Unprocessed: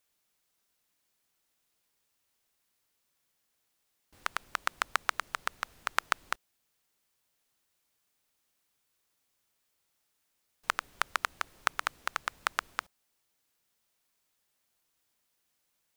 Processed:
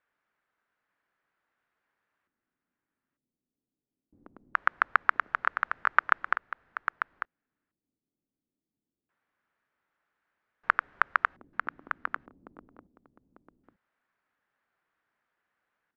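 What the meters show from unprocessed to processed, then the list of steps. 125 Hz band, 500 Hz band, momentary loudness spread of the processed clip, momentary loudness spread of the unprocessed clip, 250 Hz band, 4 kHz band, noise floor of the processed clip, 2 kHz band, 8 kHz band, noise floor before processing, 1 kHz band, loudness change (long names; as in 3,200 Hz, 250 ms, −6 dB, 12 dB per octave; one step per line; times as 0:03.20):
can't be measured, +1.0 dB, 11 LU, 7 LU, +3.0 dB, −11.5 dB, below −85 dBFS, +6.0 dB, below −25 dB, −78 dBFS, +5.5 dB, +5.0 dB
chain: low-shelf EQ 120 Hz −8 dB
auto-filter low-pass square 0.22 Hz 270–1,600 Hz
single-tap delay 896 ms −8 dB
level +1 dB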